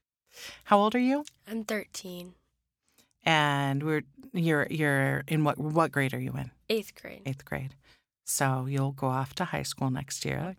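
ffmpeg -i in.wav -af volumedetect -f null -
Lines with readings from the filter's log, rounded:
mean_volume: -30.0 dB
max_volume: -7.9 dB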